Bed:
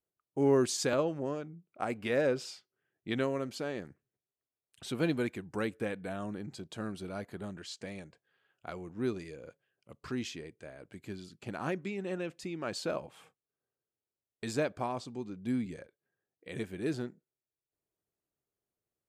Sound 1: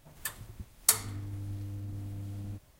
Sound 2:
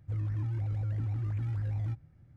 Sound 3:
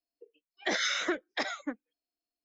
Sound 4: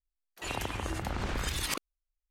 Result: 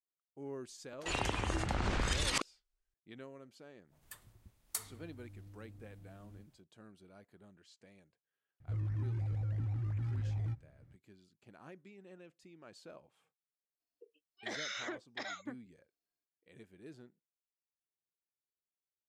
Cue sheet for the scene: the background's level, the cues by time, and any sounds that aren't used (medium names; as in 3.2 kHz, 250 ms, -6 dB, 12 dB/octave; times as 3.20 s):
bed -18.5 dB
0.64 s: add 4 + low-pass 9.1 kHz 24 dB/octave
3.86 s: add 1 -15 dB, fades 0.10 s
8.60 s: add 2 -3.5 dB
13.80 s: add 3 -5 dB + compression, threshold -32 dBFS